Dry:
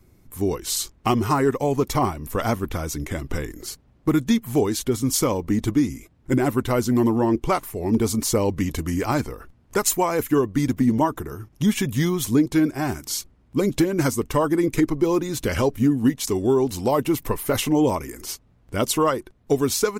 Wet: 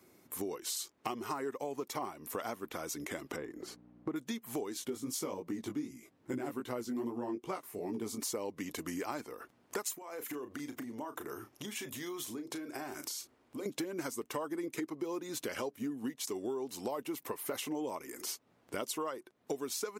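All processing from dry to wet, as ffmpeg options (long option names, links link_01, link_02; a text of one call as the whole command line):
ffmpeg -i in.wav -filter_complex "[0:a]asettb=1/sr,asplit=3[link_01][link_02][link_03];[link_01]atrim=end=3.364[link_04];[link_02]atrim=start=3.36:end=4.16,asetpts=PTS-STARTPTS,afade=type=in:duration=0.004:curve=qsin,afade=type=out:start_time=0.796:duration=0.004:curve=qsin,lowpass=frequency=1000:poles=1,aeval=exprs='val(0)+0.00631*(sin(2*PI*60*n/s)+sin(2*PI*2*60*n/s)/2+sin(2*PI*3*60*n/s)/3+sin(2*PI*4*60*n/s)/4+sin(2*PI*5*60*n/s)/5)':channel_layout=same[link_05];[link_03]atrim=start=4.156[link_06];[link_04][link_05]acrossfade=duration=0.004:curve1=hsin:curve2=qsin[link_07];[link_07][link_06]acrossfade=duration=0.004:curve1=qsin:curve2=hsin,asettb=1/sr,asplit=3[link_08][link_09][link_10];[link_08]atrim=end=4.744[link_11];[link_09]atrim=start=4.74:end=8.18,asetpts=PTS-STARTPTS,afade=type=in:duration=0.004:curve=qsin,afade=type=out:start_time=3.436:duration=0.004:curve=qsin,highpass=frequency=120:poles=1,lowshelf=frequency=210:gain=12,flanger=delay=16:depth=4.5:speed=2.5[link_12];[link_10]atrim=start=8.176[link_13];[link_11][link_12]acrossfade=duration=0.004:curve1=hsin:curve2=qsin[link_14];[link_14][link_13]acrossfade=duration=0.004:curve1=qsin:curve2=hsin,asettb=1/sr,asplit=3[link_15][link_16][link_17];[link_15]atrim=end=9.984[link_18];[link_16]atrim=start=9.98:end=13.66,asetpts=PTS-STARTPTS,afade=type=in:duration=0.004:curve=qsin,afade=type=out:start_time=3.676:duration=0.004:curve=qsin,equalizer=frequency=180:width_type=o:width=0.25:gain=-14.5,acompressor=threshold=-32dB:ratio=16:attack=3.2:release=140:knee=1:detection=peak,asplit=2[link_19][link_20];[link_20]adelay=34,volume=-10dB[link_21];[link_19][link_21]amix=inputs=2:normalize=0,atrim=end_sample=162288[link_22];[link_17]atrim=start=13.656[link_23];[link_18][link_22]acrossfade=duration=0.004:curve1=hsin:curve2=qsin[link_24];[link_24][link_23]acrossfade=duration=0.004:curve1=qsin:curve2=hsin,highpass=310,acompressor=threshold=-38dB:ratio=4" out.wav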